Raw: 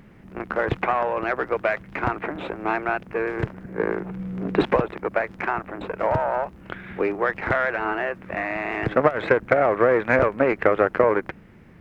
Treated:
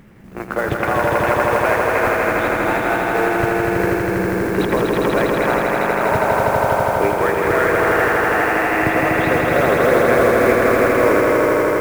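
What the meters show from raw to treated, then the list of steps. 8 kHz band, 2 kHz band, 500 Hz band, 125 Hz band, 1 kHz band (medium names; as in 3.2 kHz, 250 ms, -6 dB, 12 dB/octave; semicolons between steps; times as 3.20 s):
no reading, +8.0 dB, +7.0 dB, +8.0 dB, +8.0 dB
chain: peak limiter -12.5 dBFS, peak gain reduction 9.5 dB; modulation noise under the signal 23 dB; echo with a slow build-up 81 ms, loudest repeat 5, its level -3.5 dB; trim +3 dB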